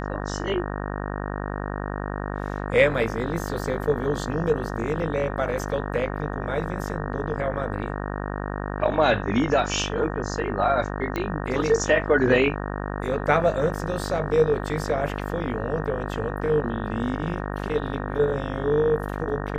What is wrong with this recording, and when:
buzz 50 Hz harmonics 37 -30 dBFS
11.16 pop -14 dBFS

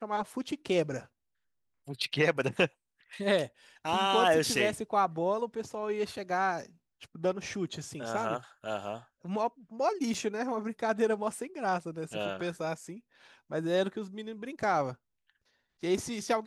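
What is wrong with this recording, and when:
10.14 gap 3.8 ms

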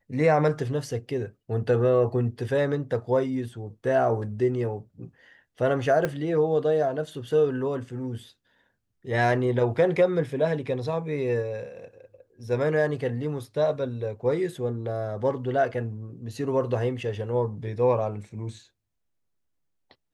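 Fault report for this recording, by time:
6.05 pop -13 dBFS

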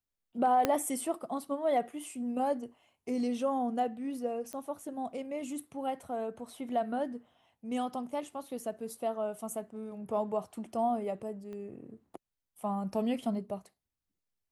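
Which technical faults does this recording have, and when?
0.65 pop -12 dBFS
4.53 pop -26 dBFS
11.53 pop -34 dBFS

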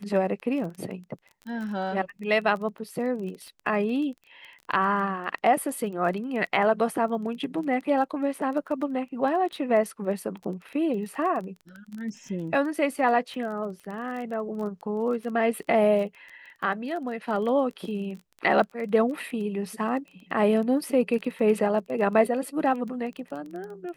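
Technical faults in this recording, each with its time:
crackle 19/s -34 dBFS

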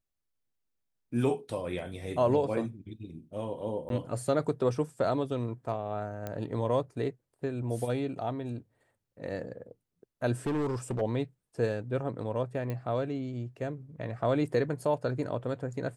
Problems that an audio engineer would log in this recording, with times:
3.89–3.9 gap
6.27 pop -22 dBFS
10.46–11.02 clipped -27 dBFS
12.7 pop -23 dBFS

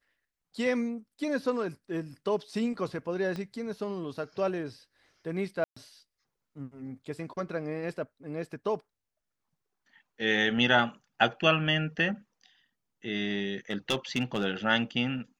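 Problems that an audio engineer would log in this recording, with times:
3.36 pop -24 dBFS
5.64–5.76 gap 0.125 s
13.7–14.44 clipped -21.5 dBFS

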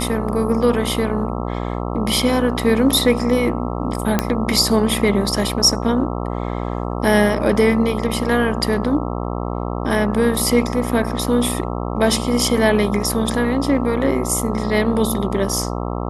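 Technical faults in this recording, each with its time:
buzz 60 Hz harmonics 22 -24 dBFS
4.19 pop -2 dBFS

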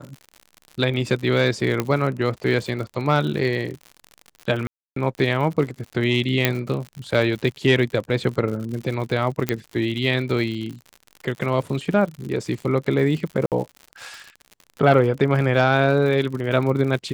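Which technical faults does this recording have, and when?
crackle 83/s -30 dBFS
1.8 pop -8 dBFS
4.67–4.96 gap 0.293 s
6.45 pop -2 dBFS
9.49 pop -6 dBFS
13.46–13.52 gap 58 ms

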